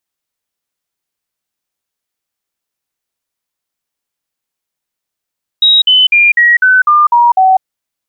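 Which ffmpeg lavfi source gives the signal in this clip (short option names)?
-f lavfi -i "aevalsrc='0.631*clip(min(mod(t,0.25),0.2-mod(t,0.25))/0.005,0,1)*sin(2*PI*3810*pow(2,-floor(t/0.25)/3)*mod(t,0.25))':d=2:s=44100"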